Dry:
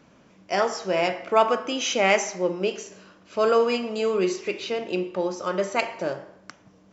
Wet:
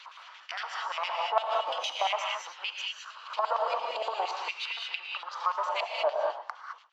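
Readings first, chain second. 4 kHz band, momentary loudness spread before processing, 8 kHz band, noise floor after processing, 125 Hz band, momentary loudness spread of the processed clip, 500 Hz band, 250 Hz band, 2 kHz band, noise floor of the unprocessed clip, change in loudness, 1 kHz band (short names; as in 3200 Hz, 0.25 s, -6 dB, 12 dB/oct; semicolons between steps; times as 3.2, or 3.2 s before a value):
-1.5 dB, 10 LU, n/a, -51 dBFS, under -40 dB, 10 LU, -11.0 dB, under -30 dB, -6.0 dB, -56 dBFS, -7.5 dB, -2.5 dB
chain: half-wave gain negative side -7 dB; LFO band-pass square 8.7 Hz 980–3200 Hz; harmonic-percussive split harmonic -11 dB; in parallel at +2 dB: upward compressor, threshold -40 dBFS; on the sum: bell 4300 Hz +4.5 dB 0.32 oct; non-linear reverb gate 0.24 s rising, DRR 2.5 dB; compressor 3:1, threshold -34 dBFS, peak gain reduction 12 dB; pre-echo 0.283 s -23 dB; LFO high-pass sine 0.45 Hz 640–1600 Hz; gate with hold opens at -38 dBFS; dynamic EQ 550 Hz, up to +7 dB, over -47 dBFS, Q 1.2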